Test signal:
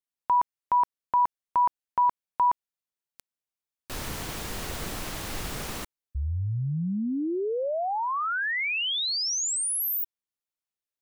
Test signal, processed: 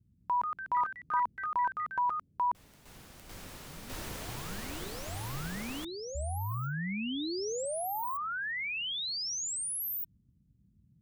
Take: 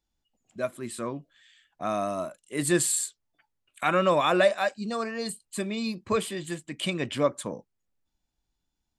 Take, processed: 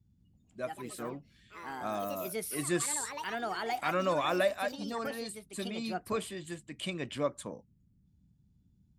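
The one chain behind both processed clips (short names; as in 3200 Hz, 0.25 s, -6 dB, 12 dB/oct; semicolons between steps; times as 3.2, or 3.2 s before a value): band noise 40–200 Hz -59 dBFS; echoes that change speed 0.2 s, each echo +4 st, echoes 3, each echo -6 dB; gain -7.5 dB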